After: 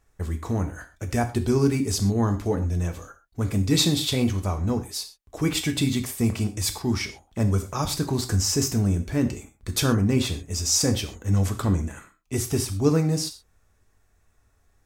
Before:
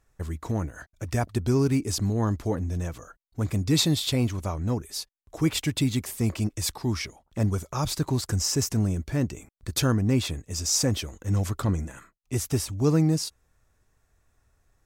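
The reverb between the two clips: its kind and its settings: gated-style reverb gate 150 ms falling, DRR 5.5 dB; trim +1.5 dB

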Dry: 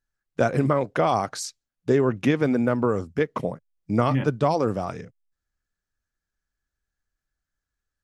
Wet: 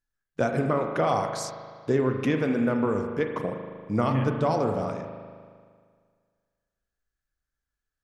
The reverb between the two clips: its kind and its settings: spring tank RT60 1.9 s, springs 38 ms, chirp 40 ms, DRR 4 dB; trim -4 dB

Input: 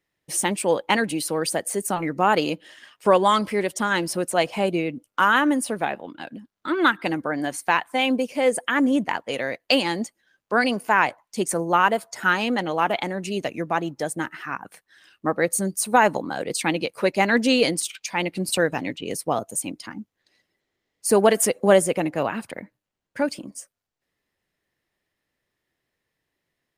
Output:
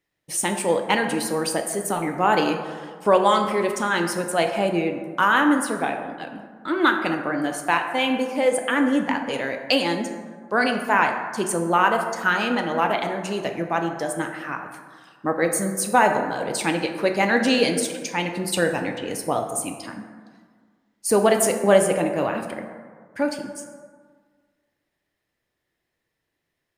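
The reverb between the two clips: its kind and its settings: plate-style reverb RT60 1.7 s, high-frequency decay 0.4×, DRR 4 dB; trim -1 dB

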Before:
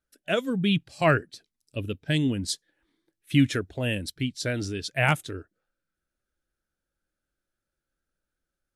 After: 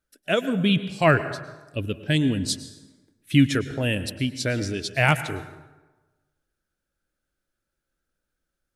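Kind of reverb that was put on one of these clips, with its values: plate-style reverb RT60 1.2 s, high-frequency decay 0.6×, pre-delay 95 ms, DRR 12.5 dB; trim +3 dB

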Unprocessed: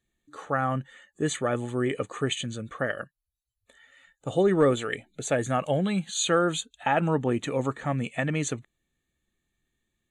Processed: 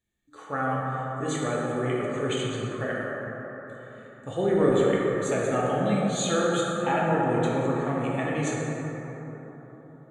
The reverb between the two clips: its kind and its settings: plate-style reverb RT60 4.3 s, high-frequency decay 0.3×, DRR -5.5 dB; trim -6 dB

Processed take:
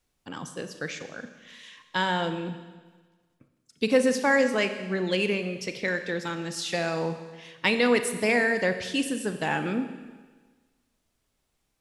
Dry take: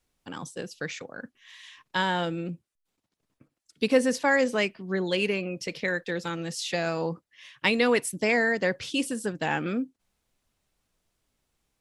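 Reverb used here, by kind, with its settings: Schroeder reverb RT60 1.4 s, combs from 29 ms, DRR 8.5 dB

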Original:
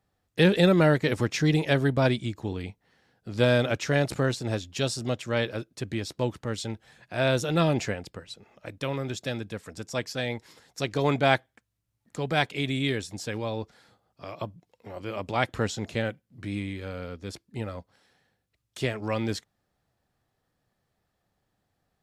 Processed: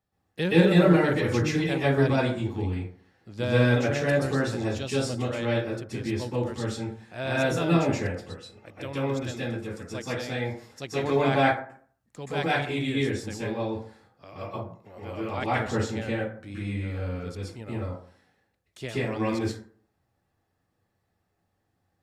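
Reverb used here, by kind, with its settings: plate-style reverb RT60 0.51 s, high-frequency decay 0.45×, pre-delay 115 ms, DRR -8 dB; trim -8 dB

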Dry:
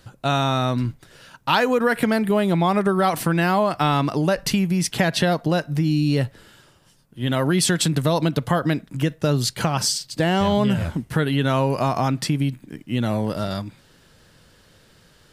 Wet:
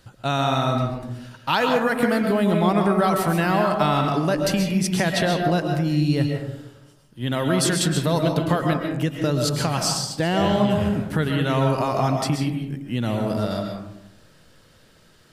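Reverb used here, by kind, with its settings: algorithmic reverb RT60 0.92 s, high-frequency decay 0.35×, pre-delay 90 ms, DRR 2.5 dB; trim -2.5 dB

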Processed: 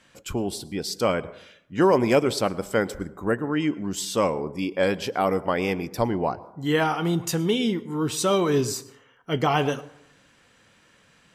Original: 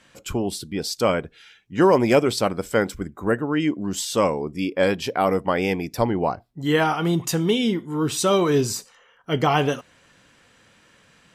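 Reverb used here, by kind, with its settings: plate-style reverb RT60 0.78 s, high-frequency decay 0.35×, pre-delay 95 ms, DRR 18.5 dB; trim -2.5 dB

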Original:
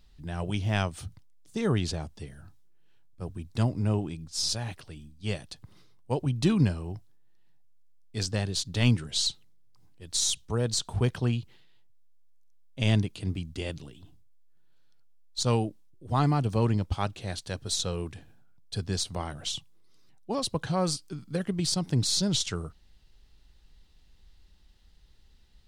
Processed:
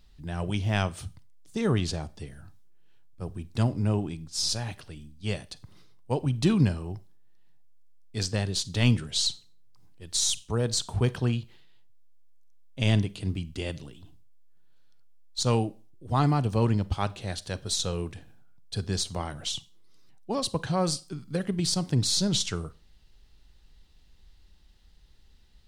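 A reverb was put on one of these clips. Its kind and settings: Schroeder reverb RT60 0.35 s, combs from 31 ms, DRR 18 dB; trim +1 dB

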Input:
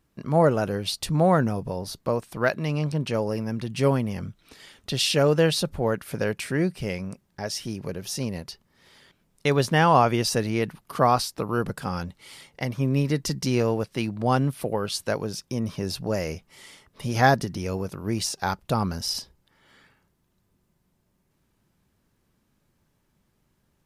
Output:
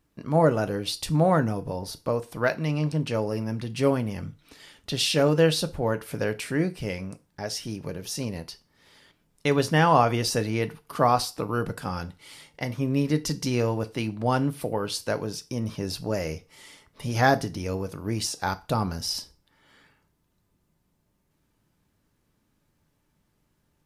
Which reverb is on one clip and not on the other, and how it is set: FDN reverb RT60 0.32 s, low-frequency decay 0.85×, high-frequency decay 0.95×, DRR 9.5 dB; trim -1.5 dB

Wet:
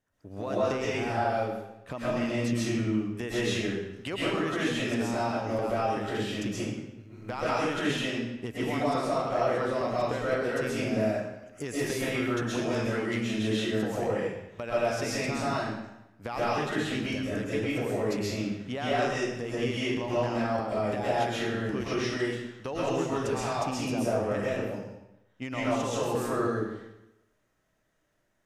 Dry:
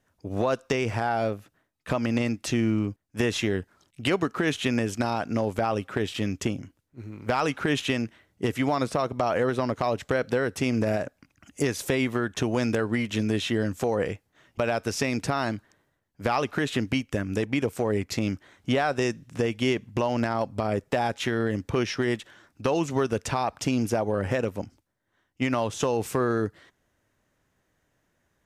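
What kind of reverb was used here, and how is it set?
algorithmic reverb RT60 0.91 s, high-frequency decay 0.9×, pre-delay 90 ms, DRR -8.5 dB; trim -11 dB

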